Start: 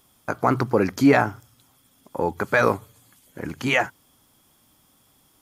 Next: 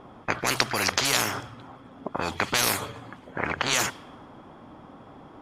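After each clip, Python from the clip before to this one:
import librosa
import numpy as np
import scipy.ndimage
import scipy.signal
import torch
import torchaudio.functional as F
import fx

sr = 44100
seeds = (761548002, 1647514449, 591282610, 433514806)

y = fx.low_shelf(x, sr, hz=160.0, db=-11.5)
y = fx.env_lowpass(y, sr, base_hz=1000.0, full_db=-16.0)
y = fx.spectral_comp(y, sr, ratio=10.0)
y = y * 10.0 ** (3.5 / 20.0)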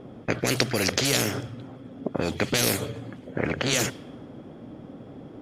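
y = fx.graphic_eq_10(x, sr, hz=(125, 250, 500, 1000), db=(7, 5, 7, -11))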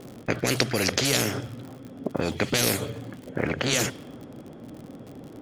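y = fx.dmg_crackle(x, sr, seeds[0], per_s=68.0, level_db=-35.0)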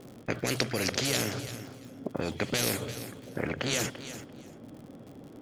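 y = fx.echo_feedback(x, sr, ms=341, feedback_pct=18, wet_db=-13.0)
y = y * 10.0 ** (-5.5 / 20.0)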